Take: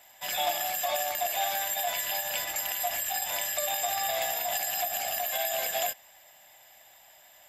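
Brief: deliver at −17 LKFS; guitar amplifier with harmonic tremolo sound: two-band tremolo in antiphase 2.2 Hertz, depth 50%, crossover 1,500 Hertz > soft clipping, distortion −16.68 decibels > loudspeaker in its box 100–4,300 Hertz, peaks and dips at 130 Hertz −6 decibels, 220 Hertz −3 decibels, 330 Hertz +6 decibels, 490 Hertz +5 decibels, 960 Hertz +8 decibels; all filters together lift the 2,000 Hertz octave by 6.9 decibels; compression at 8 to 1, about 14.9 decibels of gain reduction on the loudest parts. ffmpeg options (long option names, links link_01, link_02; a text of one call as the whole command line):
ffmpeg -i in.wav -filter_complex "[0:a]equalizer=frequency=2000:width_type=o:gain=8,acompressor=threshold=-40dB:ratio=8,acrossover=split=1500[link_01][link_02];[link_01]aeval=exprs='val(0)*(1-0.5/2+0.5/2*cos(2*PI*2.2*n/s))':channel_layout=same[link_03];[link_02]aeval=exprs='val(0)*(1-0.5/2-0.5/2*cos(2*PI*2.2*n/s))':channel_layout=same[link_04];[link_03][link_04]amix=inputs=2:normalize=0,asoftclip=threshold=-39dB,highpass=100,equalizer=frequency=130:width_type=q:width=4:gain=-6,equalizer=frequency=220:width_type=q:width=4:gain=-3,equalizer=frequency=330:width_type=q:width=4:gain=6,equalizer=frequency=490:width_type=q:width=4:gain=5,equalizer=frequency=960:width_type=q:width=4:gain=8,lowpass=frequency=4300:width=0.5412,lowpass=frequency=4300:width=1.3066,volume=30dB" out.wav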